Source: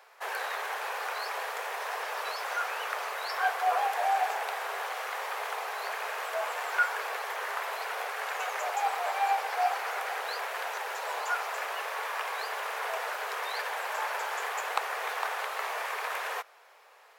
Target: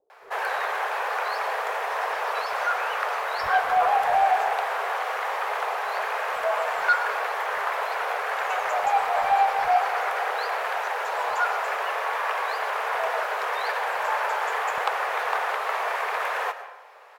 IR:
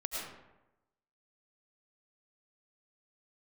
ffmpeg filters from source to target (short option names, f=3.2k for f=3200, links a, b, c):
-filter_complex "[0:a]highshelf=f=2.9k:g=-12,asoftclip=type=tanh:threshold=-21dB,acrossover=split=340[a][b];[b]adelay=100[c];[a][c]amix=inputs=2:normalize=0,asplit=2[d][e];[1:a]atrim=start_sample=2205[f];[e][f]afir=irnorm=-1:irlink=0,volume=-10dB[g];[d][g]amix=inputs=2:normalize=0,volume=7.5dB"